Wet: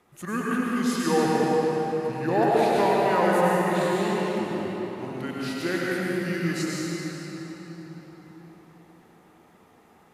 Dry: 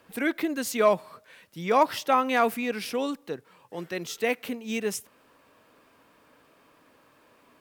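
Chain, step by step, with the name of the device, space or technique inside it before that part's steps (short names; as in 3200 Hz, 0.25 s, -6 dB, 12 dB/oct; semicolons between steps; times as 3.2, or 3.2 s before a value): slowed and reverbed (varispeed -25%; reverb RT60 4.6 s, pre-delay 89 ms, DRR -6 dB); gain -4 dB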